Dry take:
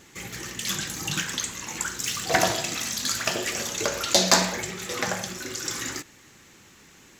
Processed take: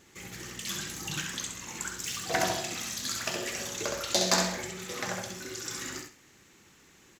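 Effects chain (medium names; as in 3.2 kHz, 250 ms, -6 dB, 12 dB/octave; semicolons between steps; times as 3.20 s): peaking EQ 370 Hz +2.5 dB 0.26 oct; feedback delay 66 ms, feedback 23%, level -5 dB; trim -7.5 dB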